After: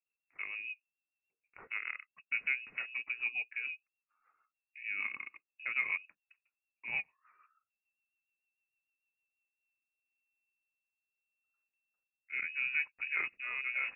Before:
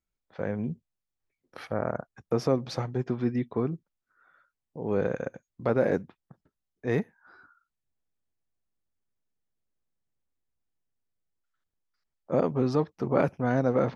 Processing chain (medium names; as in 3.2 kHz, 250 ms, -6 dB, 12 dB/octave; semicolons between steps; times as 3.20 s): frequency inversion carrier 2.7 kHz; rotary cabinet horn 6.7 Hz, later 0.8 Hz, at 9.07 s; trim -8 dB